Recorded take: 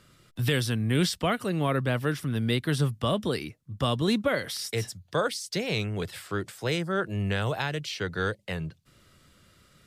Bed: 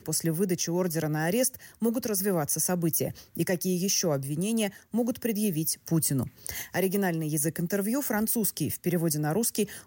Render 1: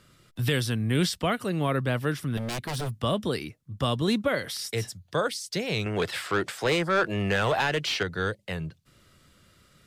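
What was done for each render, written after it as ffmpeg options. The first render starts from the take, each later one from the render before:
-filter_complex "[0:a]asettb=1/sr,asplit=3[a][b][c];[a]atrim=end=2.374[d];[b]atrim=start=2.37:end=2.99,asetpts=PTS-STARTPTS,afade=t=in:d=0.004:c=qsin,afade=t=out:st=0.616:d=0.004:c=qsin,aeval=exprs='0.0531*(abs(mod(val(0)/0.0531+3,4)-2)-1)':c=same[e];[c]atrim=start=2.986[f];[d][e]acrossfade=d=0.004:c1=hsin:c2=qsin[g];[g][f]acrossfade=d=0.004:c1=qsin:c2=hsin,asettb=1/sr,asplit=3[h][i][j];[h]atrim=end=5.864[k];[i]atrim=start=5.86:end=8.03,asetpts=PTS-STARTPTS,afade=t=in:d=0.004:c=qsin,afade=t=out:st=2.166:d=0.004:c=qsin,asplit=2[l][m];[m]highpass=f=720:p=1,volume=19dB,asoftclip=type=tanh:threshold=-14.5dB[n];[l][n]amix=inputs=2:normalize=0,lowpass=f=2.9k:p=1,volume=-6dB[o];[j]atrim=start=8.026[p];[k][o]acrossfade=d=0.004:c1=hsin:c2=qsin[q];[q][p]acrossfade=d=0.004:c1=qsin:c2=hsin"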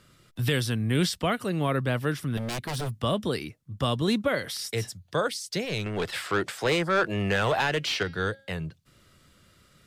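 -filter_complex "[0:a]asettb=1/sr,asplit=3[a][b][c];[a]atrim=end=5.654[d];[b]atrim=start=5.65:end=6.13,asetpts=PTS-STARTPTS,afade=t=in:d=0.004:c=qsin,afade=t=out:st=0.476:d=0.004:c=qsin,aeval=exprs='(tanh(10*val(0)+0.45)-tanh(0.45))/10':c=same[e];[c]atrim=start=6.126[f];[d][e]acrossfade=d=0.004:c1=hsin:c2=qsin[g];[g][f]acrossfade=d=0.004:c1=qsin:c2=hsin,asettb=1/sr,asplit=3[h][i][j];[h]atrim=end=7.784[k];[i]atrim=start=7.78:end=8.54,asetpts=PTS-STARTPTS,afade=t=in:d=0.004:c=qsin,afade=t=out:st=0.756:d=0.004:c=qsin,bandreject=f=271.8:t=h:w=4,bandreject=f=543.6:t=h:w=4,bandreject=f=815.4:t=h:w=4,bandreject=f=1.0872k:t=h:w=4,bandreject=f=1.359k:t=h:w=4,bandreject=f=1.6308k:t=h:w=4,bandreject=f=1.9026k:t=h:w=4,bandreject=f=2.1744k:t=h:w=4,bandreject=f=2.4462k:t=h:w=4,bandreject=f=2.718k:t=h:w=4,bandreject=f=2.9898k:t=h:w=4,bandreject=f=3.2616k:t=h:w=4,bandreject=f=3.5334k:t=h:w=4,bandreject=f=3.8052k:t=h:w=4,bandreject=f=4.077k:t=h:w=4,bandreject=f=4.3488k:t=h:w=4,bandreject=f=4.6206k:t=h:w=4,bandreject=f=4.8924k:t=h:w=4,bandreject=f=5.1642k:t=h:w=4,bandreject=f=5.436k:t=h:w=4,bandreject=f=5.7078k:t=h:w=4[l];[j]atrim=start=8.536[m];[k][l]acrossfade=d=0.004:c1=hsin:c2=qsin[n];[n][m]acrossfade=d=0.004:c1=qsin:c2=hsin"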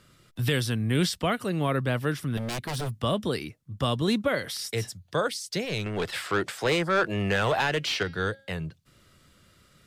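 -af anull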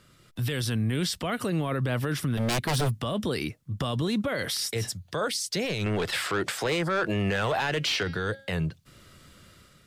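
-af "alimiter=level_in=2dB:limit=-24dB:level=0:latency=1:release=38,volume=-2dB,dynaudnorm=f=160:g=5:m=6dB"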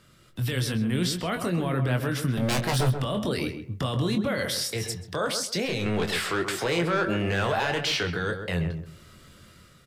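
-filter_complex "[0:a]asplit=2[a][b];[b]adelay=23,volume=-7.5dB[c];[a][c]amix=inputs=2:normalize=0,asplit=2[d][e];[e]adelay=132,lowpass=f=1.4k:p=1,volume=-6.5dB,asplit=2[f][g];[g]adelay=132,lowpass=f=1.4k:p=1,volume=0.25,asplit=2[h][i];[i]adelay=132,lowpass=f=1.4k:p=1,volume=0.25[j];[d][f][h][j]amix=inputs=4:normalize=0"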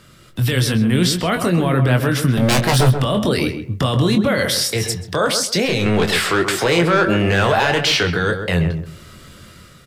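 -af "volume=10dB"

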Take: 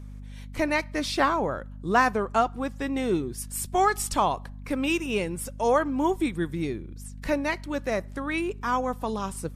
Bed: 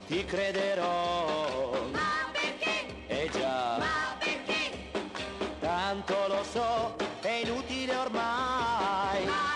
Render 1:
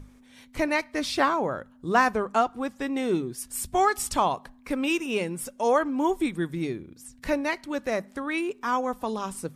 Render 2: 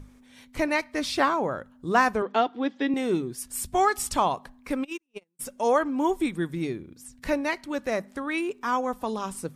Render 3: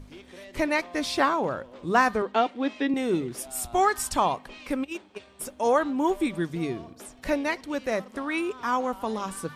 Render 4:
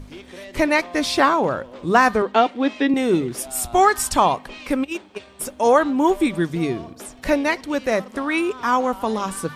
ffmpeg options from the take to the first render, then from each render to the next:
-af "bandreject=f=50:t=h:w=6,bandreject=f=100:t=h:w=6,bandreject=f=150:t=h:w=6,bandreject=f=200:t=h:w=6"
-filter_complex "[0:a]asettb=1/sr,asplit=3[a][b][c];[a]atrim=end=2.224[d];[b]atrim=start=2.22:end=2.94,asetpts=PTS-STARTPTS,afade=t=in:d=0.004:c=qsin,afade=t=out:st=0.716:d=0.004:c=qsin,highpass=230,equalizer=f=290:t=q:w=4:g=8,equalizer=f=430:t=q:w=4:g=4,equalizer=f=1.2k:t=q:w=4:g=-6,equalizer=f=1.9k:t=q:w=4:g=4,equalizer=f=3.4k:t=q:w=4:g=10,lowpass=f=4.9k:w=0.5412,lowpass=f=4.9k:w=1.3066[e];[c]atrim=start=2.936[f];[d][e]acrossfade=d=0.004:c1=hsin:c2=qsin[g];[g][f]acrossfade=d=0.004:c1=qsin:c2=hsin,asplit=3[h][i][j];[h]afade=t=out:st=4.83:d=0.02[k];[i]agate=range=-49dB:threshold=-23dB:ratio=16:release=100:detection=peak,afade=t=in:st=4.83:d=0.02,afade=t=out:st=5.39:d=0.02[l];[j]afade=t=in:st=5.39:d=0.02[m];[k][l][m]amix=inputs=3:normalize=0"
-filter_complex "[1:a]volume=-15.5dB[a];[0:a][a]amix=inputs=2:normalize=0"
-af "volume=7dB,alimiter=limit=-3dB:level=0:latency=1"

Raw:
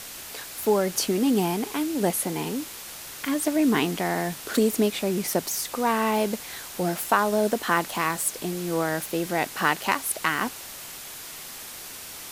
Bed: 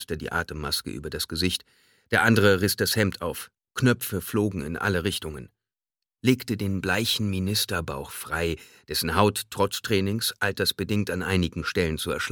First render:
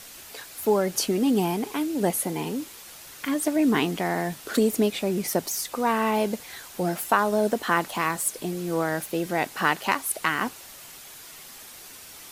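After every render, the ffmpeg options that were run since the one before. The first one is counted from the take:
-af "afftdn=nr=6:nf=-40"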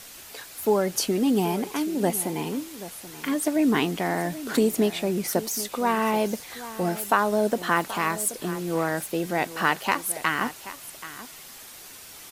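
-af "aecho=1:1:780:0.178"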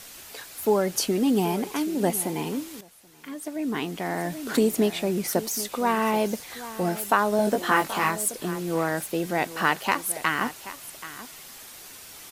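-filter_complex "[0:a]asettb=1/sr,asplit=3[a][b][c];[a]atrim=end=7.374[d];[b]atrim=start=7.37:end=8.1,asetpts=PTS-STARTPTS,afade=t=in:d=0.004:c=qsin,afade=t=out:st=0.726:d=0.004:c=qsin,asplit=2[e][f];[f]adelay=20,volume=-3dB[g];[e][g]amix=inputs=2:normalize=0,atrim=end_sample=32193[h];[c]atrim=start=8.096[i];[d][h]acrossfade=d=0.004:c1=hsin:c2=qsin[j];[j][i]acrossfade=d=0.004:c1=qsin:c2=hsin,asplit=2[k][l];[k]atrim=end=2.81,asetpts=PTS-STARTPTS,afade=t=out:st=2.806:d=0.004:c=hsin:silence=0.199526[m];[l]atrim=start=2.81,asetpts=PTS-STARTPTS,afade=t=in:d=1.62:c=qua:silence=0.199526[n];[m][n]concat=n=2:v=0:a=1"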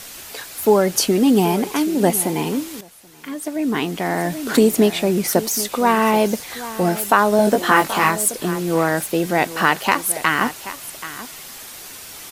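-af "volume=7.5dB,alimiter=limit=-1dB:level=0:latency=1"

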